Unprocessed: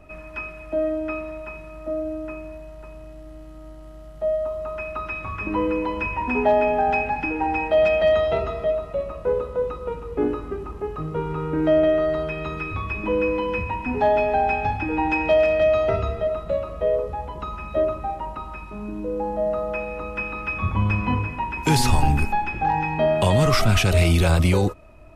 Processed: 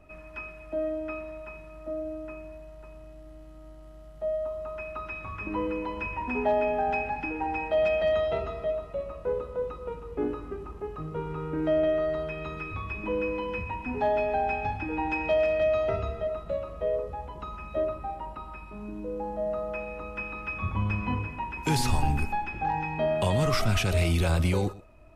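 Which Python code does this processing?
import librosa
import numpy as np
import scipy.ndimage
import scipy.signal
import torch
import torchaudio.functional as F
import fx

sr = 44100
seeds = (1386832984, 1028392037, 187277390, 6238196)

y = fx.notch(x, sr, hz=6400.0, q=7.3, at=(17.87, 18.77))
y = y + 10.0 ** (-19.5 / 20.0) * np.pad(y, (int(120 * sr / 1000.0), 0))[:len(y)]
y = F.gain(torch.from_numpy(y), -7.0).numpy()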